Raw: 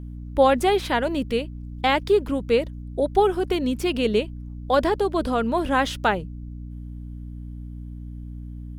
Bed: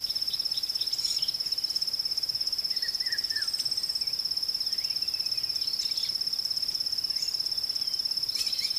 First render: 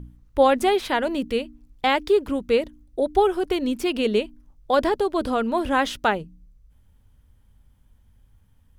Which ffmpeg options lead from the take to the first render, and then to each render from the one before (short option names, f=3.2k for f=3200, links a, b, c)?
-af "bandreject=f=60:t=h:w=4,bandreject=f=120:t=h:w=4,bandreject=f=180:t=h:w=4,bandreject=f=240:t=h:w=4,bandreject=f=300:t=h:w=4"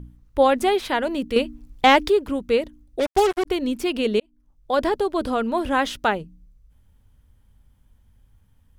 -filter_complex "[0:a]asettb=1/sr,asplit=3[a][b][c];[a]atrim=end=1.364[d];[b]atrim=start=1.36:end=2.1,asetpts=PTS-STARTPTS,afade=t=in:d=0.004:c=qsin,afade=t=out:st=0.736:d=0.004:c=qsin,acontrast=85[e];[c]atrim=start=2.096[f];[d][e]acrossfade=d=0.004:c1=hsin:c2=qsin[g];[g][f]acrossfade=d=0.004:c1=qsin:c2=hsin,asplit=3[h][i][j];[h]afade=t=out:st=2.99:d=0.02[k];[i]acrusher=bits=3:mix=0:aa=0.5,afade=t=in:st=2.99:d=0.02,afade=t=out:st=3.45:d=0.02[l];[j]afade=t=in:st=3.45:d=0.02[m];[k][l][m]amix=inputs=3:normalize=0,asplit=2[n][o];[n]atrim=end=4.2,asetpts=PTS-STARTPTS,afade=t=out:st=4.196:d=0.004:c=hsin[p];[o]atrim=start=4.2,asetpts=PTS-STARTPTS,afade=t=in:d=0.67[q];[p][q]concat=n=2:v=0:a=1"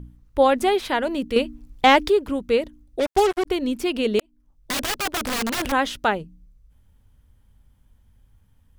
-filter_complex "[0:a]asettb=1/sr,asplit=3[a][b][c];[a]atrim=end=4.194[d];[b]atrim=start=4.19:end=5.72,asetpts=PTS-STARTPTS,afade=t=in:d=0.004:c=qsin,afade=t=out:st=1.526:d=0.004:c=qsin,aeval=exprs='(mod(10*val(0)+1,2)-1)/10':c=same[e];[c]atrim=start=5.716[f];[d][e]acrossfade=d=0.004:c1=hsin:c2=qsin[g];[g][f]acrossfade=d=0.004:c1=qsin:c2=hsin"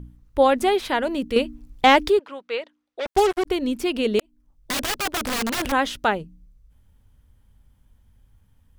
-filter_complex "[0:a]asettb=1/sr,asplit=3[a][b][c];[a]atrim=end=2.194[d];[b]atrim=start=2.19:end=3.06,asetpts=PTS-STARTPTS,afade=t=in:d=0.004:c=qsin,afade=t=out:st=0.866:d=0.004:c=qsin,highpass=740,lowpass=4k[e];[c]atrim=start=3.056[f];[d][e]acrossfade=d=0.004:c1=hsin:c2=qsin[g];[g][f]acrossfade=d=0.004:c1=qsin:c2=hsin"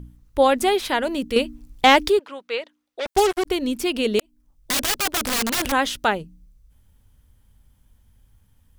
-af "highshelf=f=3.7k:g=7"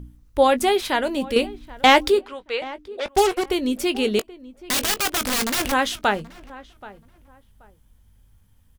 -filter_complex "[0:a]asplit=2[a][b];[b]adelay=20,volume=-13dB[c];[a][c]amix=inputs=2:normalize=0,asplit=2[d][e];[e]adelay=779,lowpass=f=1.8k:p=1,volume=-18.5dB,asplit=2[f][g];[g]adelay=779,lowpass=f=1.8k:p=1,volume=0.24[h];[d][f][h]amix=inputs=3:normalize=0"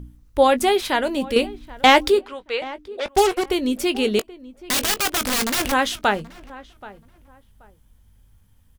-af "volume=1dB,alimiter=limit=-1dB:level=0:latency=1"